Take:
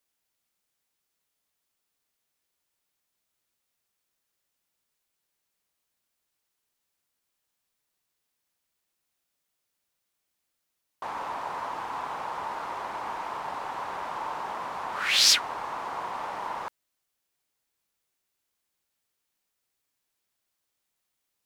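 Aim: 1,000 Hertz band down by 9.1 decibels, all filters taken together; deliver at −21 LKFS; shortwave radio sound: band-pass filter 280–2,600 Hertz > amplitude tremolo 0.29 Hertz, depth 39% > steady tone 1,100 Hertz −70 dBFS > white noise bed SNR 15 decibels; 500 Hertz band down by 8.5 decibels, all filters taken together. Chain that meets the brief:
band-pass filter 280–2,600 Hz
parametric band 500 Hz −7.5 dB
parametric band 1,000 Hz −8.5 dB
amplitude tremolo 0.29 Hz, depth 39%
steady tone 1,100 Hz −70 dBFS
white noise bed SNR 15 dB
level +19.5 dB

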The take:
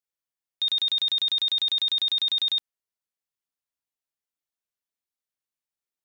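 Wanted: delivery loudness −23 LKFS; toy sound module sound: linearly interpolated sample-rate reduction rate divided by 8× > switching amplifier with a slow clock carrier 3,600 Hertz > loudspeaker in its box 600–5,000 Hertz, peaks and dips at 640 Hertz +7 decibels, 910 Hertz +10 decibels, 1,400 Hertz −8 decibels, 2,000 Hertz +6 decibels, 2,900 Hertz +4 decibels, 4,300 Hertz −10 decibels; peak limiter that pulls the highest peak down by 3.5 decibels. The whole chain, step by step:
brickwall limiter −23.5 dBFS
linearly interpolated sample-rate reduction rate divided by 8×
switching amplifier with a slow clock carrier 3,600 Hz
loudspeaker in its box 600–5,000 Hz, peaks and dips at 640 Hz +7 dB, 910 Hz +10 dB, 1,400 Hz −8 dB, 2,000 Hz +6 dB, 2,900 Hz +4 dB, 4,300 Hz −10 dB
level +10.5 dB

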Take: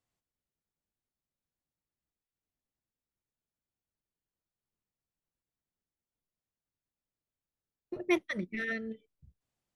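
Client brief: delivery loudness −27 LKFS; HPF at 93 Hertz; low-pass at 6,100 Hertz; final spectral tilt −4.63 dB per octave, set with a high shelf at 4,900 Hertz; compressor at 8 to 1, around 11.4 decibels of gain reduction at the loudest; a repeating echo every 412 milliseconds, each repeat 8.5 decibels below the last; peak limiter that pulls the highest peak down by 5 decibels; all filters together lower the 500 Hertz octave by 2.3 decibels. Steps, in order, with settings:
high-pass filter 93 Hz
low-pass filter 6,100 Hz
parametric band 500 Hz −4 dB
high-shelf EQ 4,900 Hz −5 dB
downward compressor 8 to 1, threshold −36 dBFS
brickwall limiter −32.5 dBFS
repeating echo 412 ms, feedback 38%, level −8.5 dB
level +17 dB

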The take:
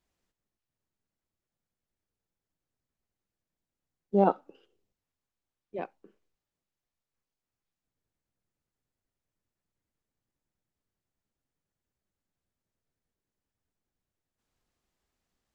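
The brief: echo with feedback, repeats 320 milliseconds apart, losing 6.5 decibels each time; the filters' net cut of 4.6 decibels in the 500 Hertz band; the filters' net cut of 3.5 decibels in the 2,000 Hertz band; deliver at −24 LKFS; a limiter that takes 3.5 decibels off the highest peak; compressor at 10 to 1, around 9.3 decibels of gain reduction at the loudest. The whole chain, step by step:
parametric band 500 Hz −6 dB
parametric band 2,000 Hz −5 dB
downward compressor 10 to 1, threshold −29 dBFS
brickwall limiter −26 dBFS
repeating echo 320 ms, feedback 47%, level −6.5 dB
level +21 dB

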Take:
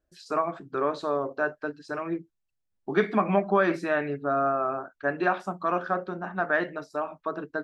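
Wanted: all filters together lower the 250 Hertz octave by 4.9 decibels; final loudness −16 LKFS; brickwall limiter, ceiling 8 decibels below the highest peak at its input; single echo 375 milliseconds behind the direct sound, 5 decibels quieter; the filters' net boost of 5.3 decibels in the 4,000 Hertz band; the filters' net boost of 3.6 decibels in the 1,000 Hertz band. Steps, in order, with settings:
parametric band 250 Hz −8 dB
parametric band 1,000 Hz +5 dB
parametric band 4,000 Hz +6 dB
brickwall limiter −15.5 dBFS
single-tap delay 375 ms −5 dB
level +11.5 dB

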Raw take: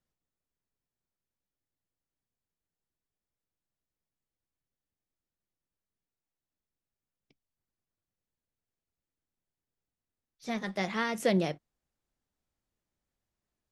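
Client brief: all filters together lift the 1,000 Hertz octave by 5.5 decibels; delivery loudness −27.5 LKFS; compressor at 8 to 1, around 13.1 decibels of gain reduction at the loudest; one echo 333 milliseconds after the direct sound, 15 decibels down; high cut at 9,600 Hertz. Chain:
low-pass filter 9,600 Hz
parametric band 1,000 Hz +7.5 dB
downward compressor 8 to 1, threshold −34 dBFS
single-tap delay 333 ms −15 dB
level +12 dB

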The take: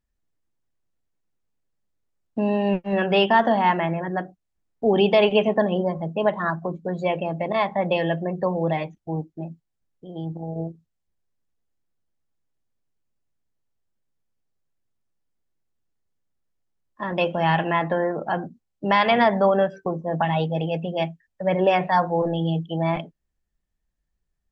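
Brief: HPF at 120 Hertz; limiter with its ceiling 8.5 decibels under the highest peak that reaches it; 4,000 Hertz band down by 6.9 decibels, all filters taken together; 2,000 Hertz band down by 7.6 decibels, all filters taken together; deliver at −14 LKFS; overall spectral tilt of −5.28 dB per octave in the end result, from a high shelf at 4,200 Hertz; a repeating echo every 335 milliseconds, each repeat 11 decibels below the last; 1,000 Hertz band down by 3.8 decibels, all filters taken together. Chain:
high-pass filter 120 Hz
parametric band 1,000 Hz −3.5 dB
parametric band 2,000 Hz −6.5 dB
parametric band 4,000 Hz −4.5 dB
high-shelf EQ 4,200 Hz −3.5 dB
brickwall limiter −17 dBFS
repeating echo 335 ms, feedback 28%, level −11 dB
level +13.5 dB

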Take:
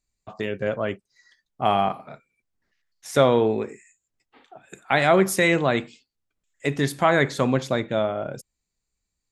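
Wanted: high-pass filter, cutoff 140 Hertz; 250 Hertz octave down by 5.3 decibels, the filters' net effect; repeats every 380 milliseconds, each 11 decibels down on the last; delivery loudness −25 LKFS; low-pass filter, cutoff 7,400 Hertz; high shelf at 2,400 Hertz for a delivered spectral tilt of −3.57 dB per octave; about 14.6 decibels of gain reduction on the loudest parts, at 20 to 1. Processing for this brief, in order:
high-pass filter 140 Hz
low-pass filter 7,400 Hz
parametric band 250 Hz −7 dB
high-shelf EQ 2,400 Hz +4.5 dB
downward compressor 20 to 1, threshold −27 dBFS
repeating echo 380 ms, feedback 28%, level −11 dB
level +9 dB

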